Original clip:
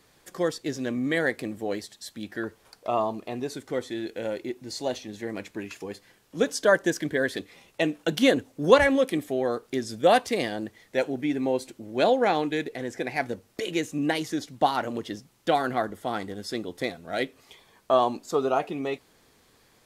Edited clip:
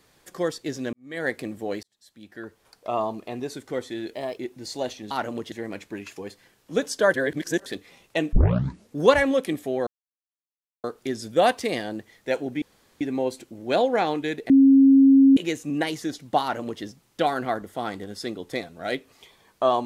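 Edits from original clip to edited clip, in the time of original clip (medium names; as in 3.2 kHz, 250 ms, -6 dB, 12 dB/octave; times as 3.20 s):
0.93–1.29 s: fade in quadratic
1.83–3.05 s: fade in
4.13–4.43 s: speed 121%
6.78–7.30 s: reverse
7.97 s: tape start 0.63 s
9.51 s: insert silence 0.97 s
11.29 s: insert room tone 0.39 s
12.78–13.65 s: bleep 271 Hz -10.5 dBFS
14.70–15.11 s: copy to 5.16 s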